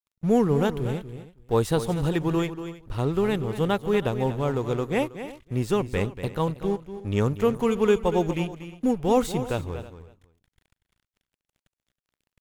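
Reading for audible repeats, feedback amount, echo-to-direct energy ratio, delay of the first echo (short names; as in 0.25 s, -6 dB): 3, no steady repeat, -10.5 dB, 0.238 s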